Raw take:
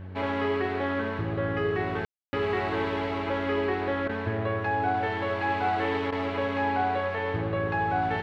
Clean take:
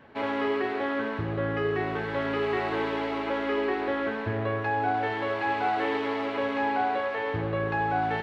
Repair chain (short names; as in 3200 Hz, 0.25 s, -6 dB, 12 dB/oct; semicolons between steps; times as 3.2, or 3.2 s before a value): de-hum 92.9 Hz, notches 7; room tone fill 2.05–2.33; interpolate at 4.08/6.11, 11 ms